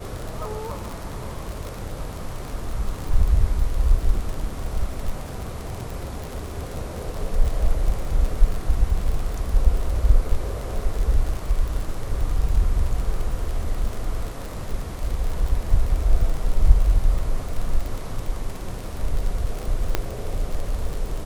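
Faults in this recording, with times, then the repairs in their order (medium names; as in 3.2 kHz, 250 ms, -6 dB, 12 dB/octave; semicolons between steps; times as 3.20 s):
crackle 48 per s -26 dBFS
19.95 s: pop -6 dBFS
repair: de-click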